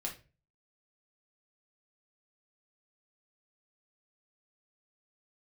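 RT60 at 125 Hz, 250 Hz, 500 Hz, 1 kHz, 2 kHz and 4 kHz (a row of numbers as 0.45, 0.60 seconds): 0.55, 0.40, 0.40, 0.25, 0.30, 0.25 seconds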